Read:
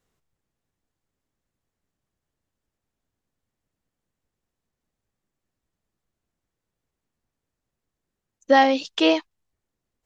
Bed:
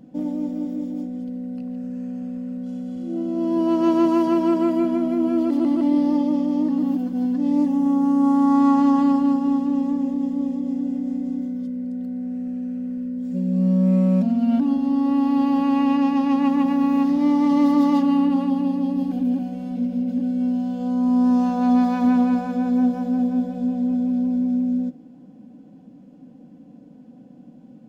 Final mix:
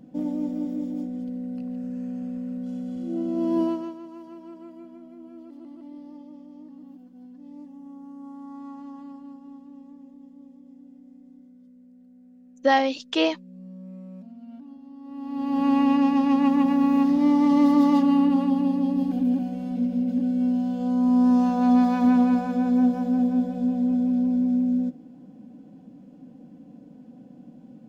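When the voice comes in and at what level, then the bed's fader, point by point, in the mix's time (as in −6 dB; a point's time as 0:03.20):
4.15 s, −3.5 dB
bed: 0:03.63 −2 dB
0:03.99 −23.5 dB
0:14.99 −23.5 dB
0:15.66 −1 dB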